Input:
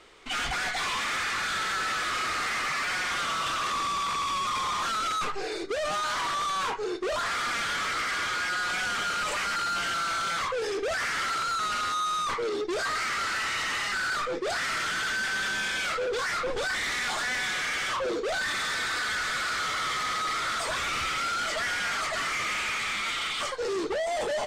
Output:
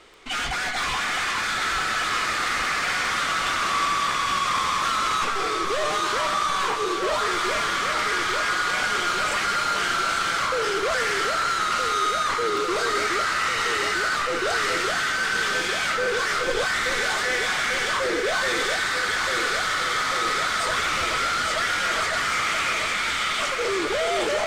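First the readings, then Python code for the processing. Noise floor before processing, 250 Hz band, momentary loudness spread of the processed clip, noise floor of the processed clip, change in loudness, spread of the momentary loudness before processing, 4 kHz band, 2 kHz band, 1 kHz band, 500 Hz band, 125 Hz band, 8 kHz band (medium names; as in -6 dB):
-32 dBFS, +5.5 dB, 1 LU, -26 dBFS, +5.5 dB, 2 LU, +5.0 dB, +5.5 dB, +5.5 dB, +5.5 dB, +5.5 dB, +5.0 dB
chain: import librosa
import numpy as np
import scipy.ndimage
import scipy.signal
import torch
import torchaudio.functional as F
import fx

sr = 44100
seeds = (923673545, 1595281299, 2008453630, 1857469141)

y = fx.dmg_crackle(x, sr, seeds[0], per_s=10.0, level_db=-36.0)
y = fx.echo_alternate(y, sr, ms=423, hz=2000.0, feedback_pct=85, wet_db=-4.0)
y = y * 10.0 ** (3.0 / 20.0)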